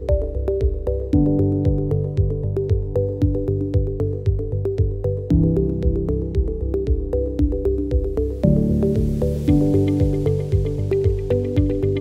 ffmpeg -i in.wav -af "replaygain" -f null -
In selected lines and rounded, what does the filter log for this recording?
track_gain = +3.0 dB
track_peak = 0.525